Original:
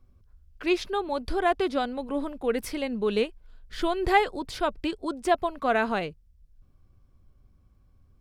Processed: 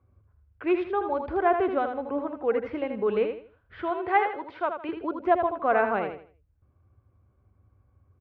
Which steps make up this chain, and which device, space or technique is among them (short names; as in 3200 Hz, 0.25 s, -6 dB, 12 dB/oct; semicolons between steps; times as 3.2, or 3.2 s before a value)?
3.81–4.89 HPF 630 Hz 6 dB/oct; bass cabinet (speaker cabinet 69–2100 Hz, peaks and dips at 100 Hz +3 dB, 160 Hz -9 dB, 240 Hz -7 dB, 1800 Hz -4 dB); feedback echo 80 ms, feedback 29%, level -7 dB; gain +1.5 dB